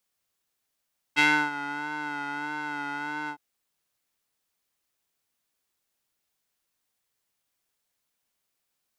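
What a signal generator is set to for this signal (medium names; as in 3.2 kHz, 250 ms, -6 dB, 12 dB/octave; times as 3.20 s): synth patch with vibrato D4, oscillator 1 square, interval 0 st, oscillator 2 level -14.5 dB, sub -7 dB, filter bandpass, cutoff 880 Hz, Q 2, filter envelope 1.5 oct, attack 30 ms, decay 0.31 s, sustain -16 dB, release 0.08 s, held 2.13 s, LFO 1.6 Hz, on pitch 42 cents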